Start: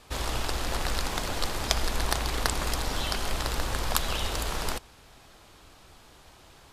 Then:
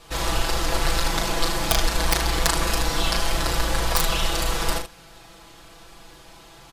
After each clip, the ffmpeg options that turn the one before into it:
-af "aecho=1:1:6:0.95,aecho=1:1:36|76:0.531|0.376,aeval=exprs='(mod(2.24*val(0)+1,2)-1)/2.24':c=same,volume=2.5dB"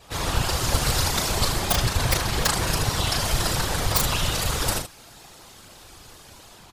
-filter_complex "[0:a]acrossover=split=240|4600[a][b][c];[c]dynaudnorm=f=340:g=3:m=7dB[d];[a][b][d]amix=inputs=3:normalize=0,afftfilt=real='hypot(re,im)*cos(2*PI*random(0))':imag='hypot(re,im)*sin(2*PI*random(1))':win_size=512:overlap=0.75,volume=4.5dB"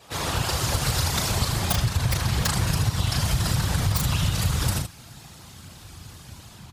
-af "highpass=94,asubboost=boost=7.5:cutoff=160,acompressor=threshold=-19dB:ratio=6"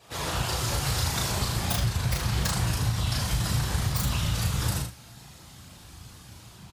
-filter_complex "[0:a]asplit=2[a][b];[b]adelay=16,volume=-10.5dB[c];[a][c]amix=inputs=2:normalize=0,aecho=1:1:35|78:0.596|0.188,volume=-5dB"

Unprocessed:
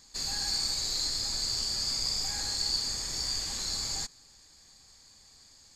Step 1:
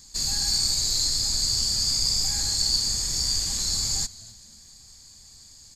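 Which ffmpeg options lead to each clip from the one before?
-filter_complex "[0:a]bass=f=250:g=10,treble=f=4k:g=10,asplit=3[a][b][c];[b]adelay=257,afreqshift=-120,volume=-20.5dB[d];[c]adelay=514,afreqshift=-240,volume=-30.7dB[e];[a][d][e]amix=inputs=3:normalize=0"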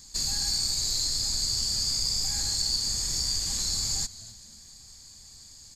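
-af "aeval=exprs='0.316*(cos(1*acos(clip(val(0)/0.316,-1,1)))-cos(1*PI/2))+0.00891*(cos(6*acos(clip(val(0)/0.316,-1,1)))-cos(6*PI/2))+0.00501*(cos(8*acos(clip(val(0)/0.316,-1,1)))-cos(8*PI/2))':c=same,acompressor=threshold=-27dB:ratio=2"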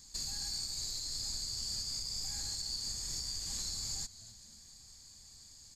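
-af "alimiter=limit=-21.5dB:level=0:latency=1:release=416,volume=-6.5dB"

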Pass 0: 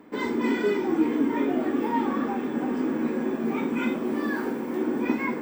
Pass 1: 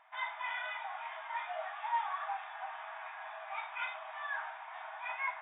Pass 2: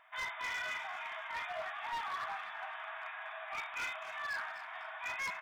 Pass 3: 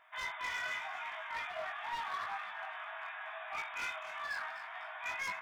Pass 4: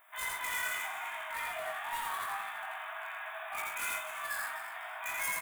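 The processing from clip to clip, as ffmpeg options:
-af "afftfilt=real='re*between(b*sr/4096,620,3800)':imag='im*between(b*sr/4096,620,3800)':win_size=4096:overlap=0.75,volume=-4.5dB"
-filter_complex "[0:a]equalizer=f=840:t=o:w=0.45:g=-10.5,asoftclip=type=hard:threshold=-38.5dB,asplit=4[a][b][c][d];[b]adelay=251,afreqshift=96,volume=-12.5dB[e];[c]adelay=502,afreqshift=192,volume=-22.4dB[f];[d]adelay=753,afreqshift=288,volume=-32.3dB[g];[a][e][f][g]amix=inputs=4:normalize=0,volume=3.5dB"
-af "flanger=delay=19:depth=2.3:speed=0.83,volume=3dB"
-filter_complex "[0:a]aexciter=amount=5.7:drive=9.5:freq=7.8k,asplit=2[a][b];[b]aecho=0:1:84.55|125.4:0.794|0.355[c];[a][c]amix=inputs=2:normalize=0"

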